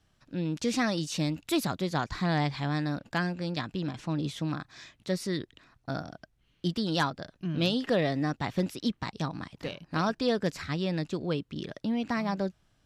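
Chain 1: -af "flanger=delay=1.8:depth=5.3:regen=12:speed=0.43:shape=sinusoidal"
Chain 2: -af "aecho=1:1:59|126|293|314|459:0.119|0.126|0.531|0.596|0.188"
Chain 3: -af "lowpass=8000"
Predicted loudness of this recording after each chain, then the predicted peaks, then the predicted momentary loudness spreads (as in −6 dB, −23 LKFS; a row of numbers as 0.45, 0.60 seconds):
−34.5, −29.0, −31.5 LKFS; −15.5, −10.5, −14.5 dBFS; 11, 8, 10 LU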